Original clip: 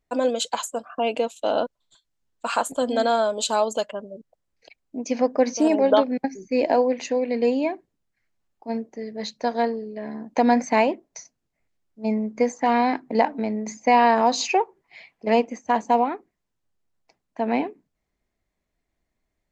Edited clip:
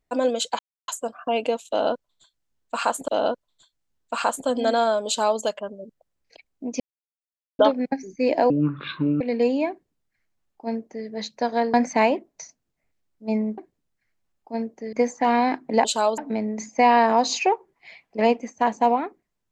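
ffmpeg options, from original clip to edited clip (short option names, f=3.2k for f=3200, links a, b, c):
-filter_complex "[0:a]asplit=12[a][b][c][d][e][f][g][h][i][j][k][l];[a]atrim=end=0.59,asetpts=PTS-STARTPTS,afade=t=out:st=0.586:d=0.004:c=hsin,apad=pad_dur=0.29[m];[b]atrim=start=0.59:end=2.792,asetpts=PTS-STARTPTS,afade=t=in:d=0.004:c=hsin[n];[c]atrim=start=1.398:end=5.12,asetpts=PTS-STARTPTS,afade=t=out:st=3.718:d=0.004:c=hsin[o];[d]atrim=start=5.12:end=5.91,asetpts=PTS-STARTPTS,volume=0[p];[e]atrim=start=5.91:end=6.824,asetpts=PTS-STARTPTS,afade=t=in:d=0.004:c=hsin[q];[f]atrim=start=6.82:end=7.23,asetpts=PTS-STARTPTS,asetrate=25578,aresample=44100,atrim=end_sample=31174,asetpts=PTS-STARTPTS[r];[g]atrim=start=7.226:end=9.762[s];[h]atrim=start=10.498:end=12.342[t];[i]atrim=start=7.728:end=9.082[u];[j]atrim=start=12.338:end=13.262[v];[k]atrim=start=3.388:end=3.722[w];[l]atrim=start=13.258[x];[m][n]concat=n=2:v=0:a=1[y];[o][p][q]concat=n=3:v=0:a=1[z];[y][z]acrossfade=d=0.004:c1=hsin:c2=hsin[aa];[aa][r]acrossfade=d=0.004:c1=hsin:c2=hsin[ab];[ab][s]acrossfade=d=0.004:c1=hsin:c2=hsin[ac];[ac][t]acrossfade=d=0.004:c1=hsin:c2=hsin[ad];[ad][u]acrossfade=d=0.004:c1=hsin:c2=hsin[ae];[ae][v]acrossfade=d=0.004:c1=hsin:c2=hsin[af];[af][w]acrossfade=d=0.004:c1=hsin:c2=hsin[ag];[ag][x]acrossfade=d=0.004:c1=hsin:c2=hsin"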